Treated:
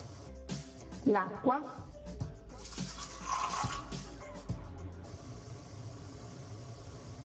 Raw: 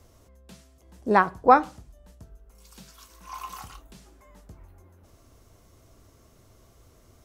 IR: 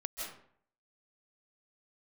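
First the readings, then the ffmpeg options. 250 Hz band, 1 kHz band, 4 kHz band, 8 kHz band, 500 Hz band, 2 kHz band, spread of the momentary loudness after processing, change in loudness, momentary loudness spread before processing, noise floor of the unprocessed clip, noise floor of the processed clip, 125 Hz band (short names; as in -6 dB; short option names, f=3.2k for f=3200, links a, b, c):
-4.0 dB, -12.5 dB, +2.0 dB, +4.0 dB, -9.5 dB, -12.5 dB, 17 LU, -17.5 dB, 21 LU, -58 dBFS, -52 dBFS, +2.5 dB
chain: -filter_complex "[0:a]acompressor=threshold=-34dB:ratio=16,lowshelf=f=170:g=6,aecho=1:1:7.1:0.51,flanger=delay=8.3:depth=8.7:regen=58:speed=1.2:shape=sinusoidal,asplit=2[a][b];[b]adelay=1050,volume=-26dB,highshelf=f=4k:g=-23.6[c];[a][c]amix=inputs=2:normalize=0,acompressor=mode=upward:threshold=-51dB:ratio=2.5,asplit=2[d][e];[e]asubboost=boost=3.5:cutoff=96[f];[1:a]atrim=start_sample=2205[g];[f][g]afir=irnorm=-1:irlink=0,volume=-11.5dB[h];[d][h]amix=inputs=2:normalize=0,volume=9dB" -ar 16000 -c:a libspeex -b:a 13k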